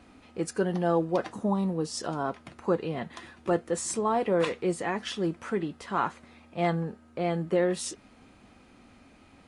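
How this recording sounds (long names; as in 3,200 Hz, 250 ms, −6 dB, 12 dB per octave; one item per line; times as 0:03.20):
background noise floor −57 dBFS
spectral slope −5.5 dB per octave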